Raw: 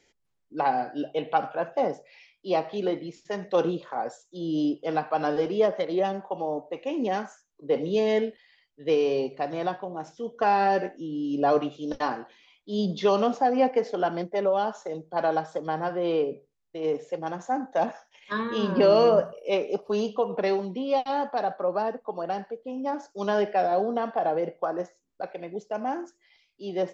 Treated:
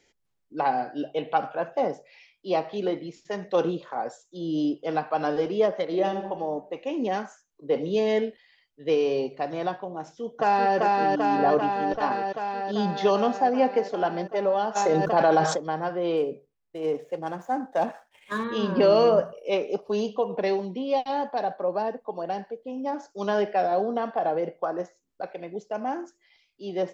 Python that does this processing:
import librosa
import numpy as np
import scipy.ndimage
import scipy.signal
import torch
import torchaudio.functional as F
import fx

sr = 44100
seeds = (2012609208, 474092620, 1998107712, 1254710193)

y = fx.reverb_throw(x, sr, start_s=5.84, length_s=0.41, rt60_s=1.0, drr_db=5.0)
y = fx.echo_throw(y, sr, start_s=10.0, length_s=0.76, ms=390, feedback_pct=80, wet_db=-1.0)
y = fx.lowpass(y, sr, hz=3500.0, slope=6, at=(11.37, 12.12))
y = fx.env_flatten(y, sr, amount_pct=70, at=(14.75, 15.55), fade=0.02)
y = fx.median_filter(y, sr, points=9, at=(16.17, 18.44))
y = fx.peak_eq(y, sr, hz=1300.0, db=-9.0, octaves=0.25, at=(19.87, 22.95))